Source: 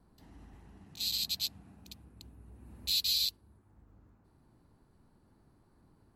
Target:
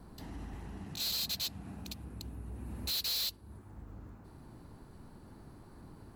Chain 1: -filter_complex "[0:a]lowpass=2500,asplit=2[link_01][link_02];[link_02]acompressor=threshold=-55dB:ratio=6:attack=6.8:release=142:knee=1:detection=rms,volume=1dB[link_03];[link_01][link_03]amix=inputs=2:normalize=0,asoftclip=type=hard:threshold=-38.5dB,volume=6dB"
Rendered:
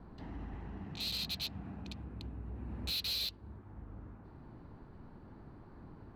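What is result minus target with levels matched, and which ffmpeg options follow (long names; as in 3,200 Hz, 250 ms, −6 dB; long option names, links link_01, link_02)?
2,000 Hz band +3.5 dB
-filter_complex "[0:a]asplit=2[link_01][link_02];[link_02]acompressor=threshold=-55dB:ratio=6:attack=6.8:release=142:knee=1:detection=rms,volume=1dB[link_03];[link_01][link_03]amix=inputs=2:normalize=0,asoftclip=type=hard:threshold=-38.5dB,volume=6dB"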